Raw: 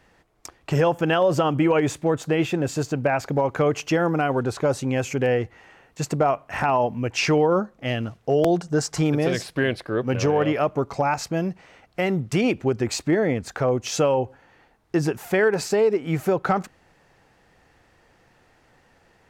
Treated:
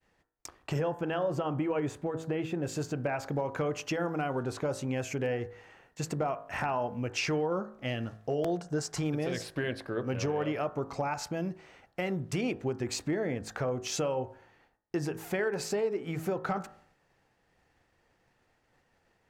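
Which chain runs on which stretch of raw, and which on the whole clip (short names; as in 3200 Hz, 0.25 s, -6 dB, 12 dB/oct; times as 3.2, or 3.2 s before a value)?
0.79–2.63 high shelf 2100 Hz -8 dB + notch 5500 Hz, Q 27
whole clip: compressor 2:1, threshold -26 dBFS; expander -52 dBFS; de-hum 53.83 Hz, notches 35; gain -5 dB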